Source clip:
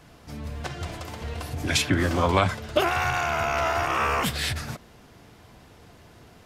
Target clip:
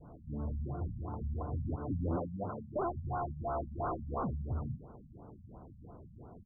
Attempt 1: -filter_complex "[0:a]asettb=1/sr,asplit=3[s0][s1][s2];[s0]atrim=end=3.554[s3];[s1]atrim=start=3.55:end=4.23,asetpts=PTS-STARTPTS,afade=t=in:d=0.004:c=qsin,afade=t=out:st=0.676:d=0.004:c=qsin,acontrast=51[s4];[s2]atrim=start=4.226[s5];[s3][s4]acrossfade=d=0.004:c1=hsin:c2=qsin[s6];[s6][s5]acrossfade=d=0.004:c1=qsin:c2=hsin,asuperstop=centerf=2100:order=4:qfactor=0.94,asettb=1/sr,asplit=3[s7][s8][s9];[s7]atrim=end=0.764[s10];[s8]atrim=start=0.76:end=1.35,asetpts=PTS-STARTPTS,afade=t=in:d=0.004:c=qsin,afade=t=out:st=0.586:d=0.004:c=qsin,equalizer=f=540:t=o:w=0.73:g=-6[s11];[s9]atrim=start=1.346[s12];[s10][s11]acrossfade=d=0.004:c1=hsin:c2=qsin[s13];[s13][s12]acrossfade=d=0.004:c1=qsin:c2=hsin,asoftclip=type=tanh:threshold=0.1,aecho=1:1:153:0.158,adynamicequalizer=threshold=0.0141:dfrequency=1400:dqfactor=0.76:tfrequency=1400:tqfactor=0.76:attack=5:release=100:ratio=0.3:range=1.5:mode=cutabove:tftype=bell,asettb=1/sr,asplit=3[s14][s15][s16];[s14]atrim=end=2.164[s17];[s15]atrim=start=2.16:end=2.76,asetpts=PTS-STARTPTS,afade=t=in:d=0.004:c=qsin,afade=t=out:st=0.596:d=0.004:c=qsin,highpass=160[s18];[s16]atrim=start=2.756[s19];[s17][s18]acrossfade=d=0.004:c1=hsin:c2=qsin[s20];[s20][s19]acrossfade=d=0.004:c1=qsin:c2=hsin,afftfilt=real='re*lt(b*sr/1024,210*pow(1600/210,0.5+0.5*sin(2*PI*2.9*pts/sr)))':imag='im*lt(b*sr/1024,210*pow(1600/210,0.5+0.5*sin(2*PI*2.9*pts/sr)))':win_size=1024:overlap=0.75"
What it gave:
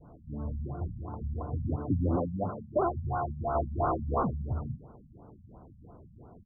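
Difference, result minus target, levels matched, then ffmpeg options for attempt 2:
saturation: distortion -7 dB
-filter_complex "[0:a]asettb=1/sr,asplit=3[s0][s1][s2];[s0]atrim=end=3.554[s3];[s1]atrim=start=3.55:end=4.23,asetpts=PTS-STARTPTS,afade=t=in:d=0.004:c=qsin,afade=t=out:st=0.676:d=0.004:c=qsin,acontrast=51[s4];[s2]atrim=start=4.226[s5];[s3][s4]acrossfade=d=0.004:c1=hsin:c2=qsin[s6];[s6][s5]acrossfade=d=0.004:c1=qsin:c2=hsin,asuperstop=centerf=2100:order=4:qfactor=0.94,asettb=1/sr,asplit=3[s7][s8][s9];[s7]atrim=end=0.764[s10];[s8]atrim=start=0.76:end=1.35,asetpts=PTS-STARTPTS,afade=t=in:d=0.004:c=qsin,afade=t=out:st=0.586:d=0.004:c=qsin,equalizer=f=540:t=o:w=0.73:g=-6[s11];[s9]atrim=start=1.346[s12];[s10][s11]acrossfade=d=0.004:c1=hsin:c2=qsin[s13];[s13][s12]acrossfade=d=0.004:c1=qsin:c2=hsin,asoftclip=type=tanh:threshold=0.0299,aecho=1:1:153:0.158,adynamicequalizer=threshold=0.0141:dfrequency=1400:dqfactor=0.76:tfrequency=1400:tqfactor=0.76:attack=5:release=100:ratio=0.3:range=1.5:mode=cutabove:tftype=bell,asettb=1/sr,asplit=3[s14][s15][s16];[s14]atrim=end=2.164[s17];[s15]atrim=start=2.16:end=2.76,asetpts=PTS-STARTPTS,afade=t=in:d=0.004:c=qsin,afade=t=out:st=0.596:d=0.004:c=qsin,highpass=160[s18];[s16]atrim=start=2.756[s19];[s17][s18]acrossfade=d=0.004:c1=hsin:c2=qsin[s20];[s20][s19]acrossfade=d=0.004:c1=qsin:c2=hsin,afftfilt=real='re*lt(b*sr/1024,210*pow(1600/210,0.5+0.5*sin(2*PI*2.9*pts/sr)))':imag='im*lt(b*sr/1024,210*pow(1600/210,0.5+0.5*sin(2*PI*2.9*pts/sr)))':win_size=1024:overlap=0.75"

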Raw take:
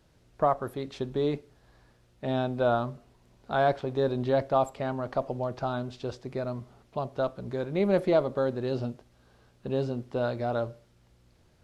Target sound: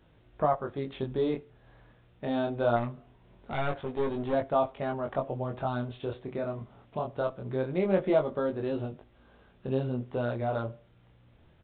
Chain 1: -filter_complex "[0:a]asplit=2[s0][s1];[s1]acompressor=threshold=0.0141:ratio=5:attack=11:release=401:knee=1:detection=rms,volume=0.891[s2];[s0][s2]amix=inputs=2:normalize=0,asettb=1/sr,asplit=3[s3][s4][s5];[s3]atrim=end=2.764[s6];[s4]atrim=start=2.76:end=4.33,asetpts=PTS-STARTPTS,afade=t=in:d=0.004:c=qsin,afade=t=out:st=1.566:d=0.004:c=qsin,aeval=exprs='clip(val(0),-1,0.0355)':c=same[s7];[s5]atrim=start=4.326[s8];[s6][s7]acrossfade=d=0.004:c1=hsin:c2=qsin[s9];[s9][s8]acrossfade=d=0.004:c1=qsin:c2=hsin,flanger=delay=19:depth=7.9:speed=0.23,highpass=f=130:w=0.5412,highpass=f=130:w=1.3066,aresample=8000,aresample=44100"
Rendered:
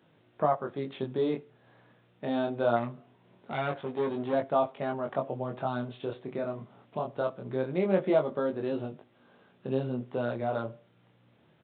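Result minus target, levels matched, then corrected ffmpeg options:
125 Hz band -3.0 dB
-filter_complex "[0:a]asplit=2[s0][s1];[s1]acompressor=threshold=0.0141:ratio=5:attack=11:release=401:knee=1:detection=rms,volume=0.891[s2];[s0][s2]amix=inputs=2:normalize=0,asettb=1/sr,asplit=3[s3][s4][s5];[s3]atrim=end=2.764[s6];[s4]atrim=start=2.76:end=4.33,asetpts=PTS-STARTPTS,afade=t=in:d=0.004:c=qsin,afade=t=out:st=1.566:d=0.004:c=qsin,aeval=exprs='clip(val(0),-1,0.0355)':c=same[s7];[s5]atrim=start=4.326[s8];[s6][s7]acrossfade=d=0.004:c1=hsin:c2=qsin[s9];[s9][s8]acrossfade=d=0.004:c1=qsin:c2=hsin,flanger=delay=19:depth=7.9:speed=0.23,aresample=8000,aresample=44100"

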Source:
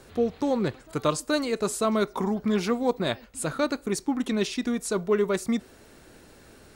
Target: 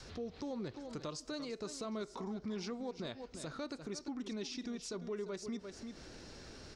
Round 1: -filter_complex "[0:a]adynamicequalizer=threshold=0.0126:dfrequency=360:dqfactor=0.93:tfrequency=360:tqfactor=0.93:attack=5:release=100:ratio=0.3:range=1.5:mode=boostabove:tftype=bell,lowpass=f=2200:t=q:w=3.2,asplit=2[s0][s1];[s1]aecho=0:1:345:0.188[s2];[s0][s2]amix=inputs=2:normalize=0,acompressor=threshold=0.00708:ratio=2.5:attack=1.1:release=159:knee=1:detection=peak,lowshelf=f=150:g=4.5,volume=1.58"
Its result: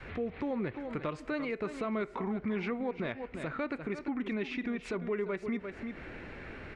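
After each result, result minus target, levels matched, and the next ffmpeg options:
4 kHz band -10.5 dB; compression: peak gain reduction -6.5 dB
-filter_complex "[0:a]adynamicequalizer=threshold=0.0126:dfrequency=360:dqfactor=0.93:tfrequency=360:tqfactor=0.93:attack=5:release=100:ratio=0.3:range=1.5:mode=boostabove:tftype=bell,lowpass=f=5400:t=q:w=3.2,asplit=2[s0][s1];[s1]aecho=0:1:345:0.188[s2];[s0][s2]amix=inputs=2:normalize=0,acompressor=threshold=0.00708:ratio=2.5:attack=1.1:release=159:knee=1:detection=peak,lowshelf=f=150:g=4.5,volume=1.58"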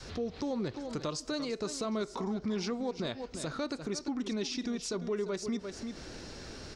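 compression: peak gain reduction -7 dB
-filter_complex "[0:a]adynamicequalizer=threshold=0.0126:dfrequency=360:dqfactor=0.93:tfrequency=360:tqfactor=0.93:attack=5:release=100:ratio=0.3:range=1.5:mode=boostabove:tftype=bell,lowpass=f=5400:t=q:w=3.2,asplit=2[s0][s1];[s1]aecho=0:1:345:0.188[s2];[s0][s2]amix=inputs=2:normalize=0,acompressor=threshold=0.00178:ratio=2.5:attack=1.1:release=159:knee=1:detection=peak,lowshelf=f=150:g=4.5,volume=1.58"

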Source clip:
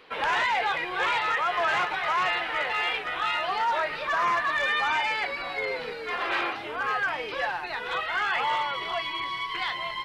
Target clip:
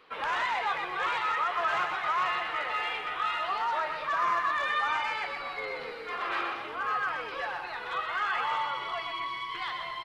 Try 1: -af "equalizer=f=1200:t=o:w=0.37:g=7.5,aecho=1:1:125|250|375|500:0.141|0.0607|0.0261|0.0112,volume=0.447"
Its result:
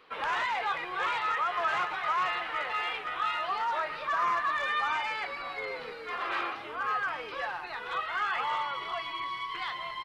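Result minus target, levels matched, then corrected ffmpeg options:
echo-to-direct -10 dB
-af "equalizer=f=1200:t=o:w=0.37:g=7.5,aecho=1:1:125|250|375|500|625:0.447|0.192|0.0826|0.0355|0.0153,volume=0.447"

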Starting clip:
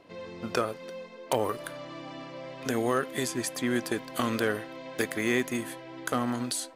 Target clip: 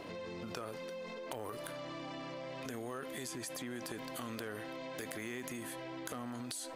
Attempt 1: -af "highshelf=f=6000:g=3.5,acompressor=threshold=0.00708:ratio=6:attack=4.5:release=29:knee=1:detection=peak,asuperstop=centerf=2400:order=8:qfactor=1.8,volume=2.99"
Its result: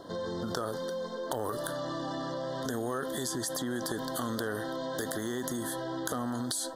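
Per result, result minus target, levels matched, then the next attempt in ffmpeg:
compression: peak gain reduction -9 dB; 2 kHz band -3.0 dB
-af "highshelf=f=6000:g=3.5,acompressor=threshold=0.002:ratio=6:attack=4.5:release=29:knee=1:detection=peak,asuperstop=centerf=2400:order=8:qfactor=1.8,volume=2.99"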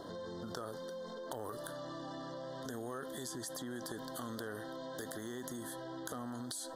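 2 kHz band -3.0 dB
-af "highshelf=f=6000:g=3.5,acompressor=threshold=0.002:ratio=6:attack=4.5:release=29:knee=1:detection=peak,volume=2.99"

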